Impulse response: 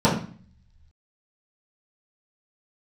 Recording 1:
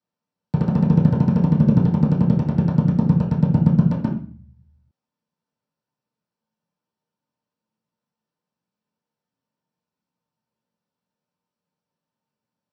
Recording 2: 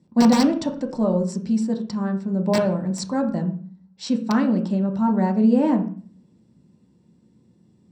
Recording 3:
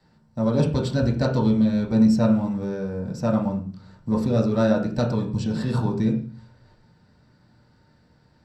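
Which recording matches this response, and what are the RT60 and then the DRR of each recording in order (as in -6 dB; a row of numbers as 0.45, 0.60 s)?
1; 0.45, 0.45, 0.45 s; -11.0, 2.0, -2.5 dB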